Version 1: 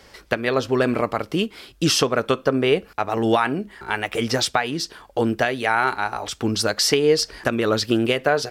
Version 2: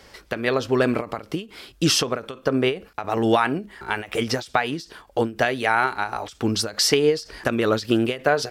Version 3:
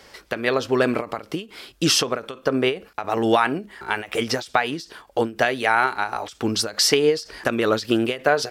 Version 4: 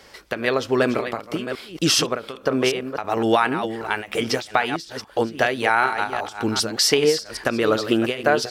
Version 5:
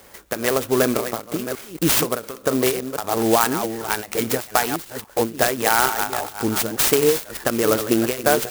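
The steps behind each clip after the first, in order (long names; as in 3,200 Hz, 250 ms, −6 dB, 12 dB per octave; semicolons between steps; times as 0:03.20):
every ending faded ahead of time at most 180 dB per second
low-shelf EQ 170 Hz −7.5 dB; level +1.5 dB
delay that plays each chunk backwards 388 ms, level −9 dB
converter with an unsteady clock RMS 0.081 ms; level +1 dB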